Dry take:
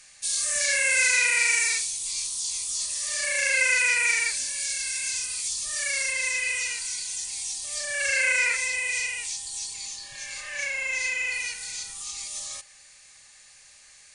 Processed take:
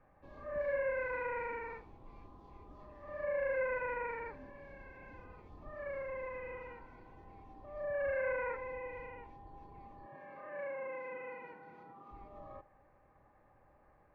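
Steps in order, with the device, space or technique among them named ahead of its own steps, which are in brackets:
under water (low-pass filter 970 Hz 24 dB per octave; parametric band 310 Hz +5.5 dB 0.46 octaves)
0:10.06–0:12.11: high-pass filter 160 Hz 24 dB per octave
level +4 dB

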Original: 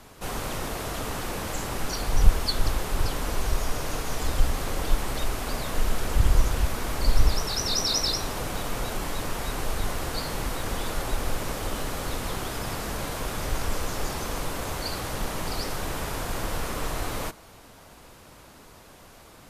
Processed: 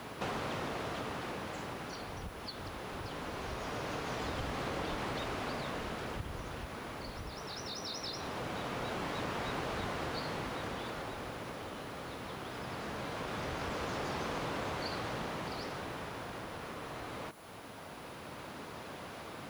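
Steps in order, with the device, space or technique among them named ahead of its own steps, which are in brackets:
medium wave at night (band-pass filter 110–3,800 Hz; downward compressor 5 to 1, threshold −41 dBFS, peak gain reduction 16.5 dB; amplitude tremolo 0.21 Hz, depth 53%; steady tone 10,000 Hz −72 dBFS; white noise bed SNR 24 dB)
level +6 dB

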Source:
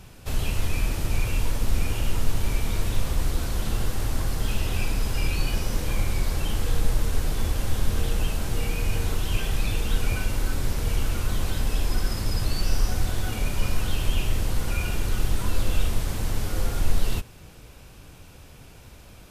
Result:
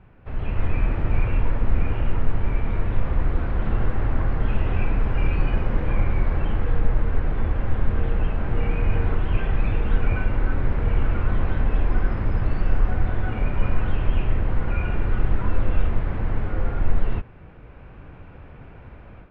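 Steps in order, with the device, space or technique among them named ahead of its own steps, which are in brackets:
action camera in a waterproof case (low-pass filter 2,100 Hz 24 dB per octave; automatic gain control gain up to 9.5 dB; level −4.5 dB; AAC 96 kbit/s 48,000 Hz)

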